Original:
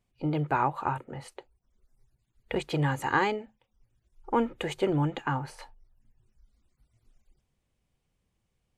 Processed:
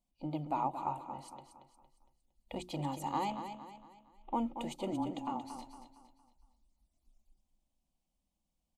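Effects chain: 3.30–4.33 s: CVSD coder 16 kbps; peaking EQ 1.9 kHz -3 dB 1.6 oct; hum notches 60/120/180/240/300/360 Hz; 4.91–5.50 s: frequency shift -20 Hz; static phaser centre 430 Hz, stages 6; feedback delay 230 ms, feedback 41%, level -9 dB; trim -4.5 dB

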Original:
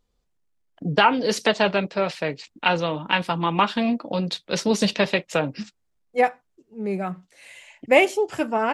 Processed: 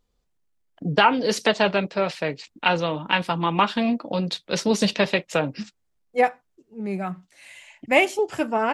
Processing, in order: 6.80–8.19 s: peaking EQ 470 Hz -13.5 dB 0.3 oct

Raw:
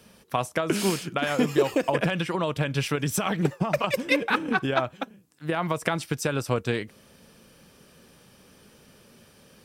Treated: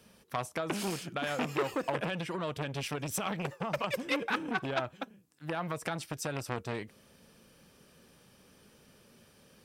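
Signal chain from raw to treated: rattle on loud lows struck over -24 dBFS, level -12 dBFS; transformer saturation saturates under 1.9 kHz; trim -6 dB

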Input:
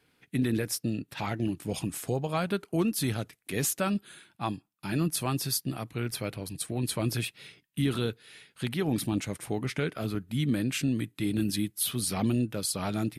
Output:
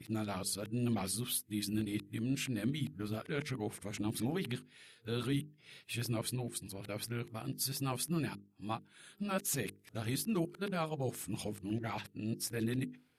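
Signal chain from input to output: reverse the whole clip; hum notches 50/100/150/200/250/300/350/400/450 Hz; trim -6.5 dB

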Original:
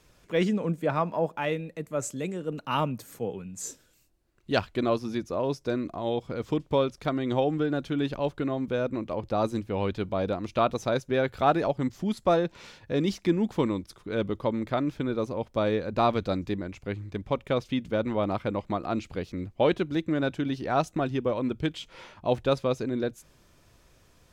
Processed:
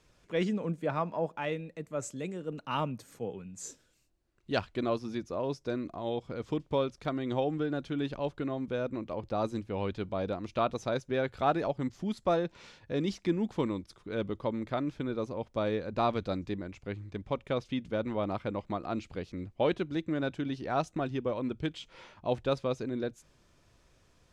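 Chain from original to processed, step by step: low-pass 9 kHz 12 dB/octave; trim -5 dB

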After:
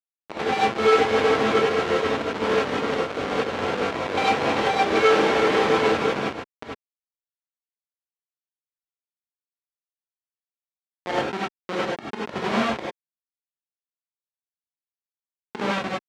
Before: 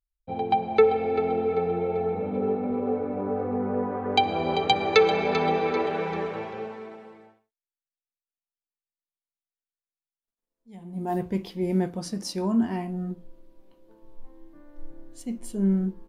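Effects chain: in parallel at +2.5 dB: compression 16:1, threshold -37 dBFS, peak gain reduction 24.5 dB; on the sum: tremolo saw up 6.3 Hz, depth 50%; Schmitt trigger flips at -23 dBFS; band-pass 360–3500 Hz; gated-style reverb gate 120 ms rising, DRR -7 dB; trim +6 dB

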